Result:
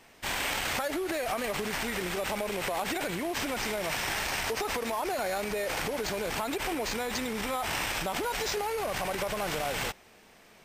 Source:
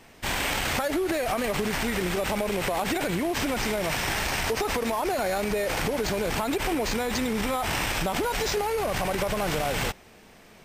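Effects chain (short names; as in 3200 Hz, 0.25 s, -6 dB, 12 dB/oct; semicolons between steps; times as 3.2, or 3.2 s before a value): low shelf 320 Hz -7 dB; gain -3 dB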